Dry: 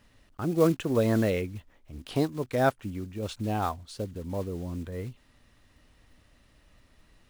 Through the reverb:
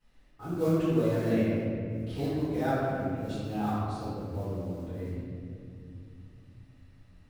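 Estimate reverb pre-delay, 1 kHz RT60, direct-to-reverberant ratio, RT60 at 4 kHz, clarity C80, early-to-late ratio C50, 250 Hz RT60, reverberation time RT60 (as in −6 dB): 3 ms, 2.0 s, −17.0 dB, 1.3 s, −1.5 dB, −3.5 dB, 4.3 s, 2.5 s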